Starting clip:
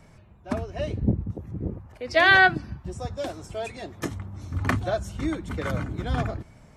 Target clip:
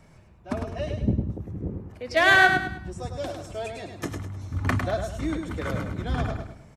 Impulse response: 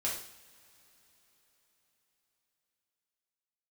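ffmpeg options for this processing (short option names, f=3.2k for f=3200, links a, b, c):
-filter_complex "[0:a]asettb=1/sr,asplit=3[a][b][c];[a]atrim=end=2.164[d];[b]atrim=start=2.16:end=2.69,asetpts=PTS-STARTPTS,afade=t=in:d=0.004:c=qsin,afade=t=out:st=0.526:d=0.004:c=qsin,adynamicsmooth=sensitivity=3:basefreq=3.7k[e];[c]atrim=start=2.686[f];[d][e]acrossfade=d=0.004:c1=hsin:c2=qsin[g];[g][f]acrossfade=d=0.004:c1=qsin:c2=hsin,aecho=1:1:103|206|309|412:0.501|0.18|0.065|0.0234,volume=-1.5dB"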